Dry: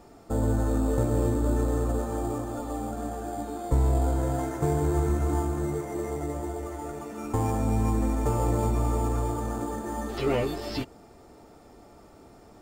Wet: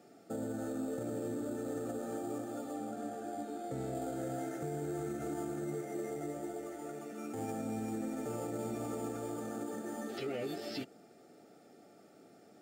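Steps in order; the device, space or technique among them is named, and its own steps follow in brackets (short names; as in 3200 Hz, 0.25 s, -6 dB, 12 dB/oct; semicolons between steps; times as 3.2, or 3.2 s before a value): PA system with an anti-feedback notch (HPF 150 Hz 24 dB/oct; Butterworth band-stop 1000 Hz, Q 2.5; limiter -23.5 dBFS, peak gain reduction 8.5 dB); 2.74–3.95 high shelf 9100 Hz -6 dB; gain -6.5 dB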